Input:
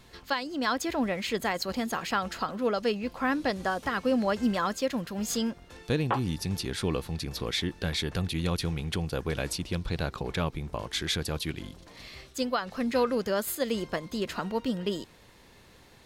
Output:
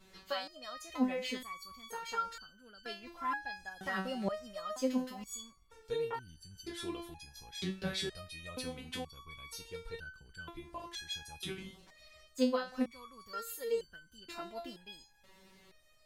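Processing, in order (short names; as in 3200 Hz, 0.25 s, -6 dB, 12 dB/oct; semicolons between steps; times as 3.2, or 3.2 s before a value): stepped resonator 2.1 Hz 190–1500 Hz; gain +6.5 dB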